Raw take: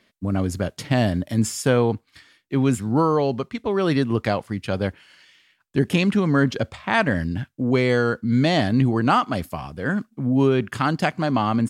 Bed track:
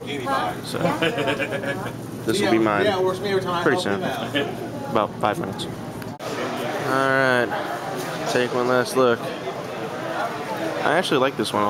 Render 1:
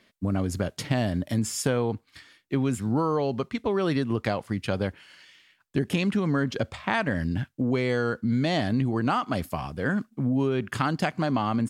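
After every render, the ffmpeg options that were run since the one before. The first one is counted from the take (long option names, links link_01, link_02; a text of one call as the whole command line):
ffmpeg -i in.wav -af "acompressor=threshold=-22dB:ratio=4" out.wav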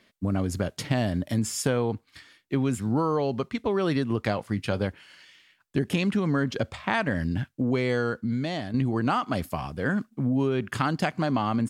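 ffmpeg -i in.wav -filter_complex "[0:a]asettb=1/sr,asplit=3[link_01][link_02][link_03];[link_01]atrim=end=4.264[link_04];[link_02]atrim=start=4.26:end=4.86,asetpts=PTS-STARTPTS,afade=type=in:duration=0.004:curve=qsin,afade=type=out:start_time=0.596:duration=0.004:curve=qsin,asplit=2[link_05][link_06];[link_06]adelay=19,volume=-14dB[link_07];[link_05][link_07]amix=inputs=2:normalize=0,atrim=end_sample=26460[link_08];[link_03]atrim=start=4.856[link_09];[link_04][link_08]acrossfade=duration=0.004:curve1=hsin:curve2=qsin[link_10];[link_10][link_09]acrossfade=duration=0.004:curve1=qsin:curve2=hsin,asplit=2[link_11][link_12];[link_11]atrim=end=8.74,asetpts=PTS-STARTPTS,afade=type=out:start_time=7.98:duration=0.76:silence=0.354813[link_13];[link_12]atrim=start=8.74,asetpts=PTS-STARTPTS,afade=type=in:duration=0.004:curve=hsin:silence=0.354813[link_14];[link_13][link_14]concat=n=2:v=0:a=1" out.wav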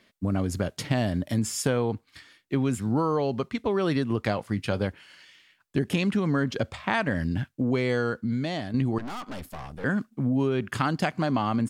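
ffmpeg -i in.wav -filter_complex "[0:a]asettb=1/sr,asplit=3[link_01][link_02][link_03];[link_01]atrim=end=8.984[link_04];[link_02]atrim=start=8.98:end=9.84,asetpts=PTS-STARTPTS,afade=type=in:duration=0.004:curve=qsin,afade=type=out:start_time=0.856:duration=0.004:curve=qsin,aeval=exprs='(tanh(50.1*val(0)+0.7)-tanh(0.7))/50.1':channel_layout=same[link_05];[link_03]atrim=start=9.836[link_06];[link_04][link_05]acrossfade=duration=0.004:curve1=hsin:curve2=qsin[link_07];[link_07][link_06]acrossfade=duration=0.004:curve1=qsin:curve2=hsin" out.wav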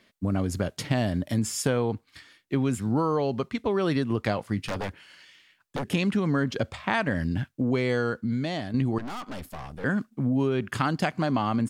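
ffmpeg -i in.wav -filter_complex "[0:a]asettb=1/sr,asplit=3[link_01][link_02][link_03];[link_01]atrim=end=4.654[link_04];[link_02]atrim=start=4.65:end=5.86,asetpts=PTS-STARTPTS,afade=type=in:duration=0.004:curve=qsin,afade=type=out:start_time=1.206:duration=0.004:curve=qsin,aeval=exprs='0.0631*(abs(mod(val(0)/0.0631+3,4)-2)-1)':channel_layout=same[link_05];[link_03]atrim=start=5.856[link_06];[link_04][link_05]acrossfade=duration=0.004:curve1=hsin:curve2=qsin[link_07];[link_07][link_06]acrossfade=duration=0.004:curve1=qsin:curve2=hsin" out.wav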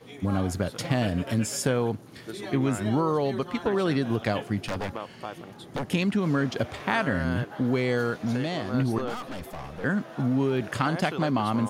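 ffmpeg -i in.wav -i bed.wav -filter_complex "[1:a]volume=-16dB[link_01];[0:a][link_01]amix=inputs=2:normalize=0" out.wav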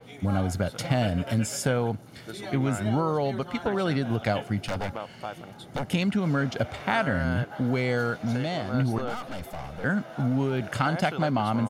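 ffmpeg -i in.wav -af "aecho=1:1:1.4:0.35,adynamicequalizer=threshold=0.00794:dfrequency=3700:dqfactor=0.7:tfrequency=3700:tqfactor=0.7:attack=5:release=100:ratio=0.375:range=1.5:mode=cutabove:tftype=highshelf" out.wav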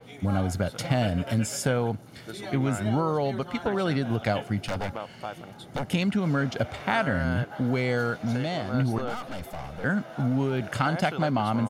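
ffmpeg -i in.wav -af anull out.wav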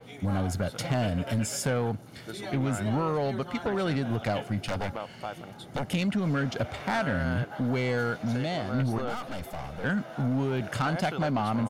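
ffmpeg -i in.wav -af "asoftclip=type=tanh:threshold=-20.5dB" out.wav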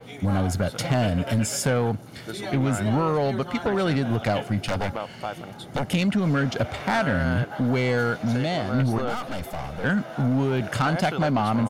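ffmpeg -i in.wav -af "volume=5dB" out.wav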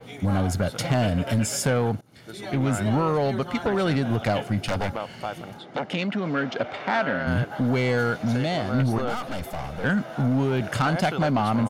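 ffmpeg -i in.wav -filter_complex "[0:a]asplit=3[link_01][link_02][link_03];[link_01]afade=type=out:start_time=5.58:duration=0.02[link_04];[link_02]highpass=250,lowpass=3900,afade=type=in:start_time=5.58:duration=0.02,afade=type=out:start_time=7.26:duration=0.02[link_05];[link_03]afade=type=in:start_time=7.26:duration=0.02[link_06];[link_04][link_05][link_06]amix=inputs=3:normalize=0,asplit=2[link_07][link_08];[link_07]atrim=end=2.01,asetpts=PTS-STARTPTS,afade=type=out:start_time=2.006:duration=0.004:curve=hsin:silence=0.1[link_09];[link_08]atrim=start=2.01,asetpts=PTS-STARTPTS,afade=type=in:duration=0.67:silence=0.1[link_10];[link_09][link_10]concat=n=2:v=0:a=1" out.wav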